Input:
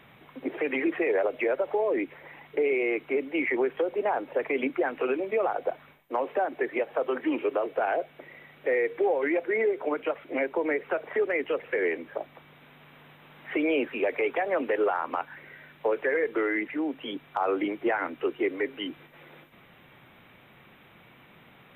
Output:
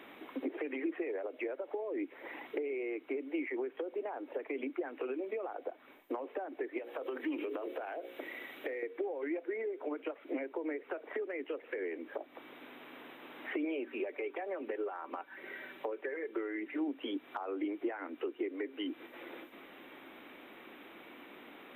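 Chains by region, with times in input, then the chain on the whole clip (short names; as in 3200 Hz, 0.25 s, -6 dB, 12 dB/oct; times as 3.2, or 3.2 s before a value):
6.78–8.83 high shelf 3000 Hz +9.5 dB + notches 60/120/180/240/300/360/420/480/540 Hz + compressor 5:1, threshold -30 dBFS
13.64–16.88 notches 60/120/180/240/300 Hz + comb 5.2 ms, depth 42%
whole clip: compressor 10:1, threshold -40 dBFS; resonant low shelf 200 Hz -13 dB, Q 3; gain +1 dB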